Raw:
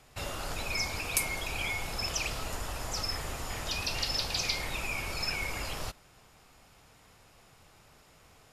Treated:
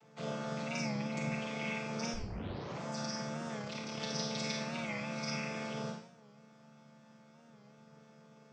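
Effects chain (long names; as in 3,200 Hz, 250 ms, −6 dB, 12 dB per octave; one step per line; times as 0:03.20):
channel vocoder with a chord as carrier minor triad, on D3
0:00.79–0:01.32: tilt shelving filter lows +5 dB, about 710 Hz
0:02.14: tape start 0.66 s
0:03.59–0:04.00: amplitude modulation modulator 36 Hz, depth 55%
four-comb reverb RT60 0.59 s, combs from 32 ms, DRR 1 dB
wow of a warped record 45 rpm, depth 100 cents
level −4.5 dB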